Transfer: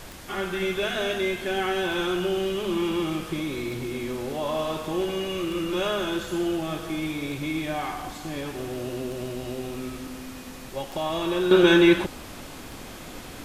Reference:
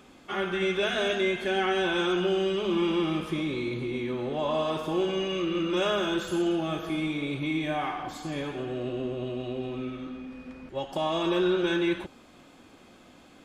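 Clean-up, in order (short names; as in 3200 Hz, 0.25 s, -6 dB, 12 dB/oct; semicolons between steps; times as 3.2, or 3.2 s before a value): de-click; denoiser 13 dB, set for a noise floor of -40 dBFS; gain correction -10 dB, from 11.51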